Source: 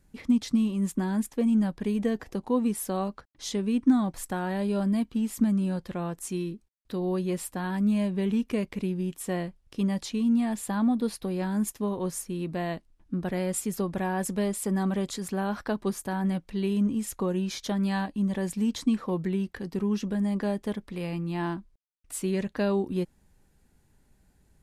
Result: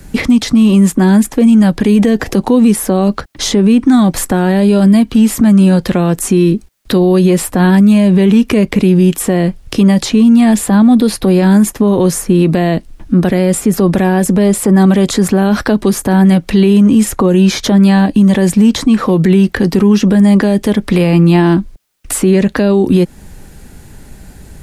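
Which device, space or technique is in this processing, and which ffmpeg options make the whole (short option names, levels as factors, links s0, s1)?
mastering chain: -filter_complex "[0:a]equalizer=f=990:t=o:w=0.44:g=-2.5,acrossover=split=120|580|1800[s0][s1][s2][s3];[s0]acompressor=threshold=0.00282:ratio=4[s4];[s1]acompressor=threshold=0.0447:ratio=4[s5];[s2]acompressor=threshold=0.00631:ratio=4[s6];[s3]acompressor=threshold=0.00447:ratio=4[s7];[s4][s5][s6][s7]amix=inputs=4:normalize=0,acompressor=threshold=0.0126:ratio=1.5,alimiter=level_in=31.6:limit=0.891:release=50:level=0:latency=1,volume=0.891"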